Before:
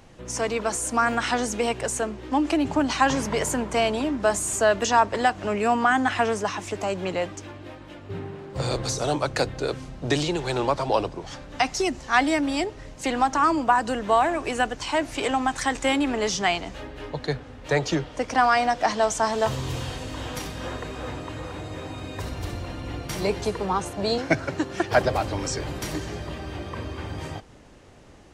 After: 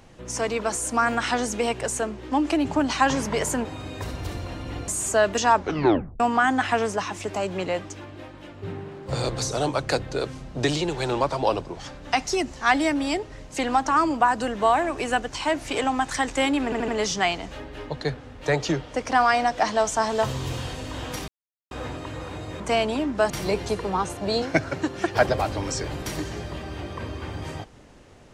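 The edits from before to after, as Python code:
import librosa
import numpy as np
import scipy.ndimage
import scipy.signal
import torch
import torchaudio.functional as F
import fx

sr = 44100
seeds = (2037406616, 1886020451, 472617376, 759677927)

y = fx.edit(x, sr, fx.swap(start_s=3.65, length_s=0.7, other_s=21.83, other_length_s=1.23),
    fx.tape_stop(start_s=5.01, length_s=0.66),
    fx.stutter(start_s=16.11, slice_s=0.08, count=4),
    fx.silence(start_s=20.51, length_s=0.43), tone=tone)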